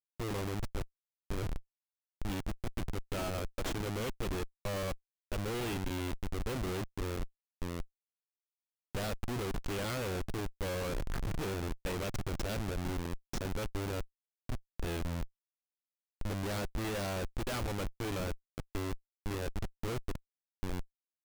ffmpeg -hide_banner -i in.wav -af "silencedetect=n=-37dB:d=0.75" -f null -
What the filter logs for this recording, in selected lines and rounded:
silence_start: 7.82
silence_end: 8.95 | silence_duration: 1.13
silence_start: 15.24
silence_end: 16.21 | silence_duration: 0.97